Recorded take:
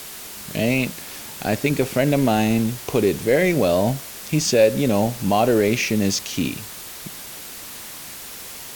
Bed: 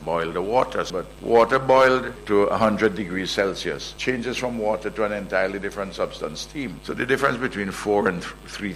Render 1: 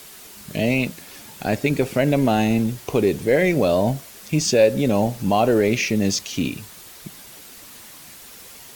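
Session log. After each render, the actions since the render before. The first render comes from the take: noise reduction 7 dB, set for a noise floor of -36 dBFS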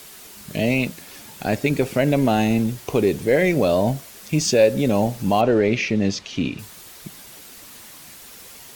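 5.41–6.59 s: low-pass 4.1 kHz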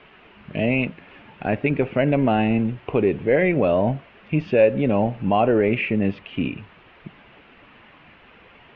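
elliptic low-pass 2.8 kHz, stop band 80 dB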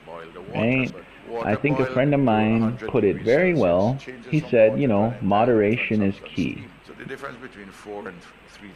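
add bed -14 dB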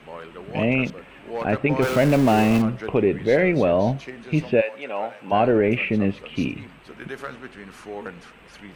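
1.82–2.62 s: jump at every zero crossing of -23.5 dBFS; 4.60–5.31 s: high-pass 1.2 kHz -> 500 Hz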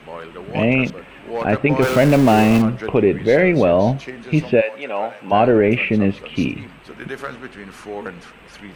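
trim +4.5 dB; peak limiter -3 dBFS, peak gain reduction 1.5 dB

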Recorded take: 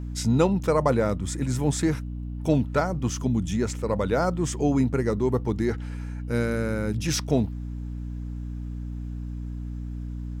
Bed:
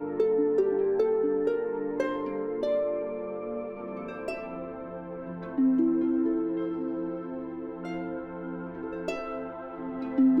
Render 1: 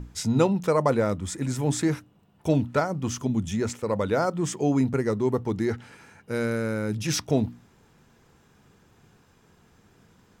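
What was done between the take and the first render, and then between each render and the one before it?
hum notches 60/120/180/240/300 Hz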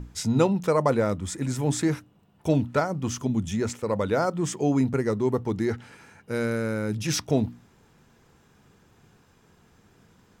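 no audible change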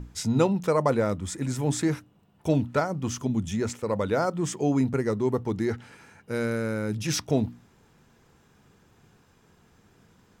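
trim -1 dB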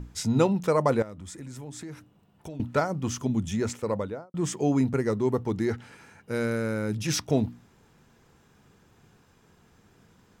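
1.02–2.60 s: compression 5:1, threshold -38 dBFS; 3.82–4.34 s: studio fade out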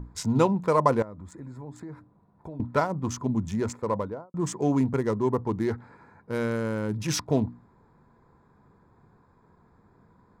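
local Wiener filter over 15 samples; peaking EQ 1 kHz +9.5 dB 0.24 oct

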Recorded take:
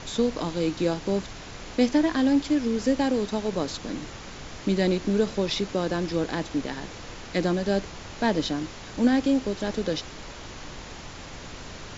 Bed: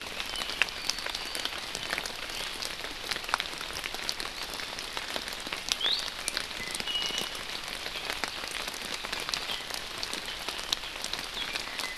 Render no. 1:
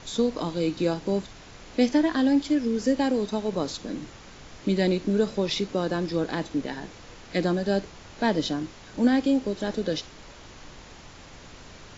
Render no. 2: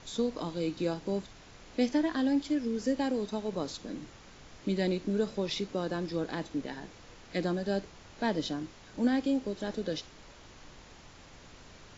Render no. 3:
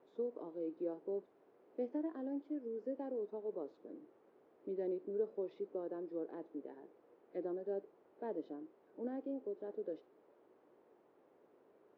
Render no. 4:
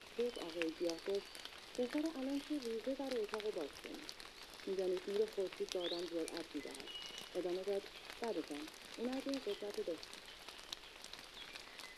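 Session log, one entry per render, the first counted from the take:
noise print and reduce 6 dB
trim -6.5 dB
ladder band-pass 460 Hz, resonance 50%
add bed -18 dB

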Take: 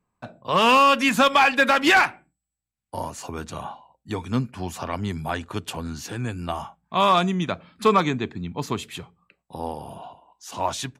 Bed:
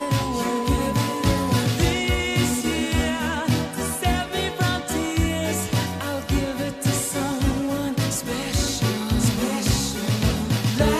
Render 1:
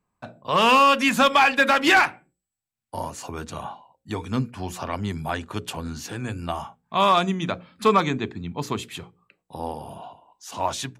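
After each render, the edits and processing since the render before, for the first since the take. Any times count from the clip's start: hum notches 60/120/180/240/300/360/420/480/540 Hz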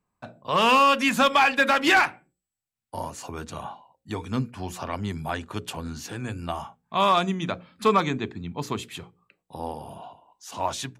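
trim -2 dB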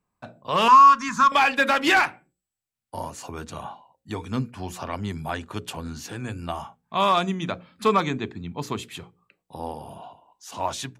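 0.68–1.32 s: FFT filter 130 Hz 0 dB, 440 Hz -12 dB, 700 Hz -29 dB, 1 kHz +10 dB, 2.9 kHz -14 dB, 6.2 kHz +2 dB, 11 kHz -19 dB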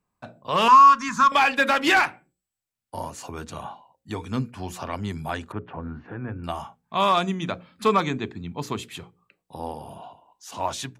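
5.52–6.44 s: low-pass 1.8 kHz 24 dB/octave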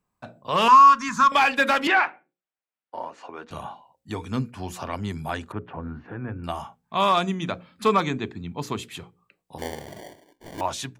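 1.87–3.51 s: band-pass 370–2500 Hz; 9.58–10.61 s: sample-rate reducer 1.3 kHz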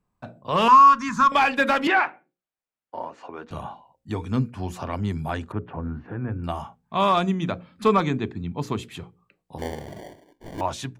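tilt EQ -1.5 dB/octave

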